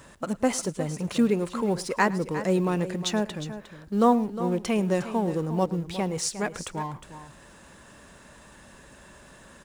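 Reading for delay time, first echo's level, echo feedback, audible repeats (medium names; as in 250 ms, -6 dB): 108 ms, -20.5 dB, no regular repeats, 3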